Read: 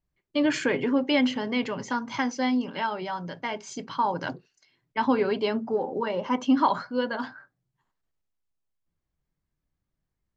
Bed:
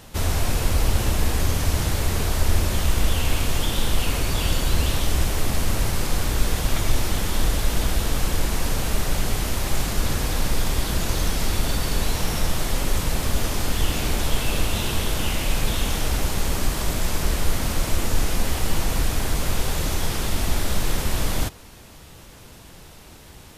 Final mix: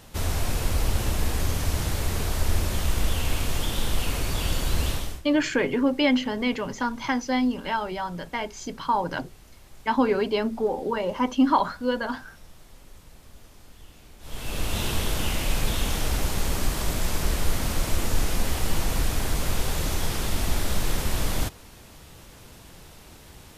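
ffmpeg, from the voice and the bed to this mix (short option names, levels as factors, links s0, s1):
-filter_complex "[0:a]adelay=4900,volume=1.19[s0];[1:a]volume=10,afade=t=out:st=4.89:d=0.33:silence=0.0749894,afade=t=in:st=14.2:d=0.62:silence=0.0630957[s1];[s0][s1]amix=inputs=2:normalize=0"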